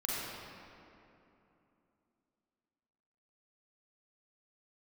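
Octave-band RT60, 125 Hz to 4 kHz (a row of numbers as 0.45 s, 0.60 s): 3.2 s, 3.6 s, 3.0 s, 2.8 s, 2.3 s, 1.6 s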